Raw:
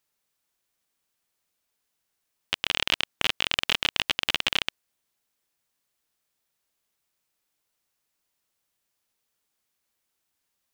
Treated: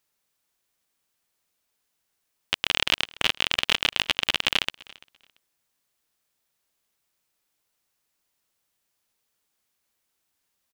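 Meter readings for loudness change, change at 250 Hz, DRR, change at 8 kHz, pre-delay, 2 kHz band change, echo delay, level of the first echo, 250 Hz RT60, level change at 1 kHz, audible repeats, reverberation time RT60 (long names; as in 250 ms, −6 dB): +2.0 dB, +2.0 dB, no reverb audible, +2.0 dB, no reverb audible, +2.0 dB, 340 ms, −23.0 dB, no reverb audible, +2.0 dB, 1, no reverb audible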